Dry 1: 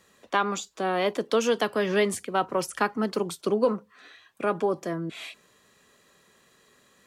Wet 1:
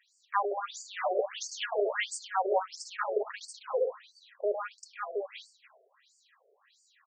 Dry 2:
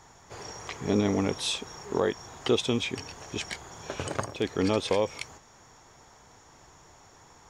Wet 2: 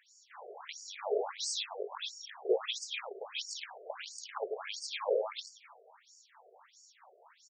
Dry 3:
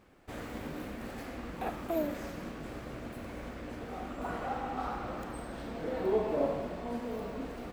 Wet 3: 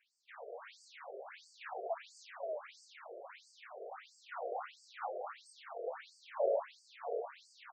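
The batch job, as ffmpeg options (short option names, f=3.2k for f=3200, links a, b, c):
-af "aecho=1:1:105|177|234|530:0.531|0.562|0.282|0.531,afftfilt=real='re*between(b*sr/1024,490*pow(6400/490,0.5+0.5*sin(2*PI*1.5*pts/sr))/1.41,490*pow(6400/490,0.5+0.5*sin(2*PI*1.5*pts/sr))*1.41)':imag='im*between(b*sr/1024,490*pow(6400/490,0.5+0.5*sin(2*PI*1.5*pts/sr))/1.41,490*pow(6400/490,0.5+0.5*sin(2*PI*1.5*pts/sr))*1.41)':win_size=1024:overlap=0.75,volume=-1.5dB"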